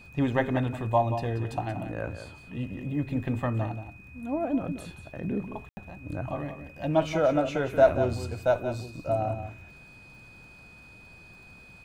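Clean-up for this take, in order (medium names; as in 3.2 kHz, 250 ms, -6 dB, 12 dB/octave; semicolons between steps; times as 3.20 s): de-click; band-stop 2.5 kHz, Q 30; room tone fill 5.69–5.77 s; inverse comb 180 ms -10 dB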